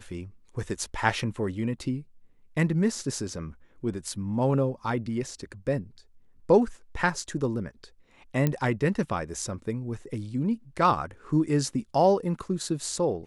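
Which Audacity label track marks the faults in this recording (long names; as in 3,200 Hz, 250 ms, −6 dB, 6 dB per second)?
8.470000	8.470000	click −12 dBFS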